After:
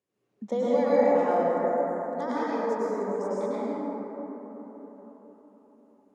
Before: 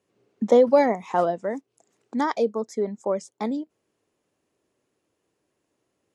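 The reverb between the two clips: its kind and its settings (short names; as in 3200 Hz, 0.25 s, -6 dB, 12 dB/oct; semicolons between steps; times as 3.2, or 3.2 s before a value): plate-style reverb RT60 4.6 s, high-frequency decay 0.25×, pre-delay 90 ms, DRR -10 dB; gain -13.5 dB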